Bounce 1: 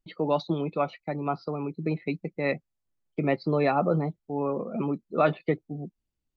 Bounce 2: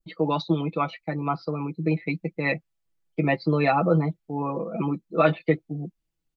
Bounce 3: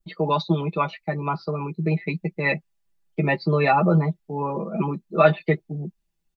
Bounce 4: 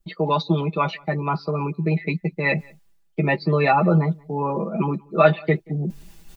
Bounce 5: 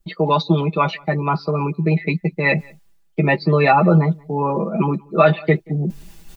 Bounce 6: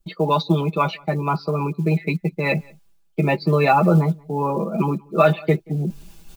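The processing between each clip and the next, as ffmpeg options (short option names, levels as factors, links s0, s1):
-af "aecho=1:1:6.1:0.82,adynamicequalizer=threshold=0.0126:dfrequency=2500:dqfactor=0.82:tfrequency=2500:tqfactor=0.82:attack=5:release=100:ratio=0.375:range=2:mode=boostabove:tftype=bell"
-af "aecho=1:1:5:0.63,volume=1.19"
-filter_complex "[0:a]areverse,acompressor=mode=upward:threshold=0.1:ratio=2.5,areverse,asplit=2[s0][s1];[s1]adelay=180.8,volume=0.0447,highshelf=f=4000:g=-4.07[s2];[s0][s2]amix=inputs=2:normalize=0,volume=1.12"
-af "alimiter=level_in=1.78:limit=0.891:release=50:level=0:latency=1,volume=0.891"
-af "acrusher=bits=9:mode=log:mix=0:aa=0.000001,bandreject=f=1900:w=6,volume=0.794"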